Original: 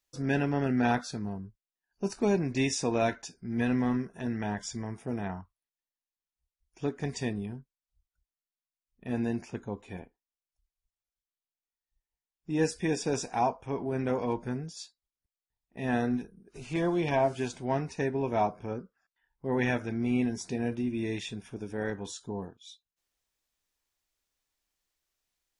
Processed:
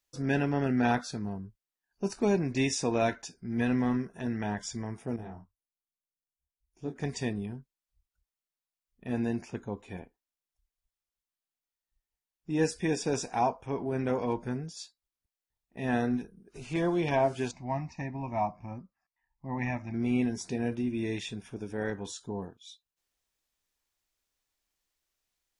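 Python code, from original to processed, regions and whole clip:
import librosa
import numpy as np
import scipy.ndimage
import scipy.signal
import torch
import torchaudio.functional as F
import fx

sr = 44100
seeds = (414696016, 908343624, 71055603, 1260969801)

y = fx.chain(x, sr, fx.peak_eq(hz=2000.0, db=-10.5, octaves=2.9),
    fx.detune_double(cents=46), at=(5.16, 6.96))
y = fx.chain(y, sr, fx.high_shelf(hz=3200.0, db=-9.0),
    fx.fixed_phaser(hz=2200.0, stages=8), at=(17.51, 19.94))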